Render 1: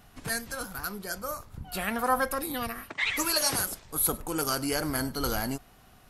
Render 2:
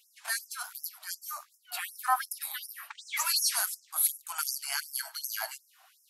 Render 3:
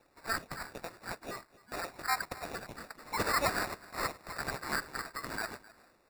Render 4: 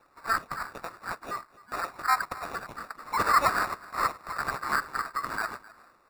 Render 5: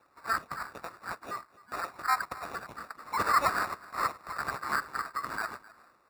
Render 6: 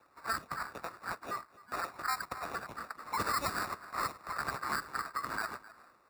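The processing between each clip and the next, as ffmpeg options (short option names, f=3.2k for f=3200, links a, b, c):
-af "afftfilt=real='re*gte(b*sr/1024,590*pow(5200/590,0.5+0.5*sin(2*PI*2.7*pts/sr)))':imag='im*gte(b*sr/1024,590*pow(5200/590,0.5+0.5*sin(2*PI*2.7*pts/sr)))':win_size=1024:overlap=0.75"
-af "superequalizer=9b=0.501:10b=0.562:13b=0.316:16b=0.355,acrusher=samples=14:mix=1:aa=0.000001,aecho=1:1:260:0.0944"
-af "equalizer=f=1.2k:t=o:w=0.75:g=12.5"
-af "highpass=46,volume=-3dB"
-filter_complex "[0:a]acrossover=split=360|3000[a][b][c];[b]acompressor=threshold=-32dB:ratio=6[d];[a][d][c]amix=inputs=3:normalize=0"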